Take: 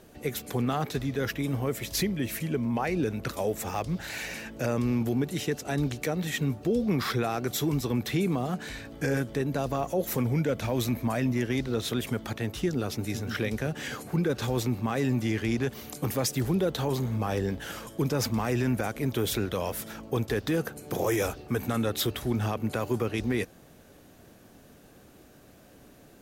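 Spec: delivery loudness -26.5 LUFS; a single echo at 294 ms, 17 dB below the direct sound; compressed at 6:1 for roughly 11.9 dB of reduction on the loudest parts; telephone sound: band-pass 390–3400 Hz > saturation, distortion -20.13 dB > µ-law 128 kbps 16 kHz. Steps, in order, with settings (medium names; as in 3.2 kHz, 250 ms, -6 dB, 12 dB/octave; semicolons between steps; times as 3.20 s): compression 6:1, threshold -36 dBFS; band-pass 390–3400 Hz; delay 294 ms -17 dB; saturation -33 dBFS; trim +18.5 dB; µ-law 128 kbps 16 kHz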